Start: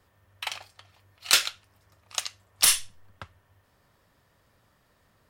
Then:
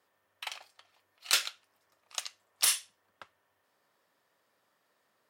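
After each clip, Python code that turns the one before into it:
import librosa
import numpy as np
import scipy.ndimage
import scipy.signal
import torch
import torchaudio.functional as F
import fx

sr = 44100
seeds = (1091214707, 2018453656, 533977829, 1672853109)

y = scipy.signal.sosfilt(scipy.signal.butter(2, 330.0, 'highpass', fs=sr, output='sos'), x)
y = y * 10.0 ** (-6.5 / 20.0)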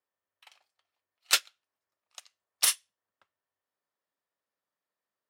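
y = fx.upward_expand(x, sr, threshold_db=-37.0, expansion=2.5)
y = y * 10.0 ** (4.5 / 20.0)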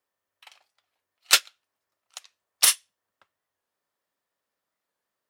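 y = fx.record_warp(x, sr, rpm=45.0, depth_cents=160.0)
y = y * 10.0 ** (6.0 / 20.0)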